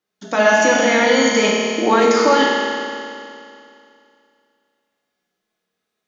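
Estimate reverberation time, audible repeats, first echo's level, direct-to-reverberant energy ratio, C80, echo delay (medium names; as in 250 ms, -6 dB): 2.5 s, no echo, no echo, -4.0 dB, 0.5 dB, no echo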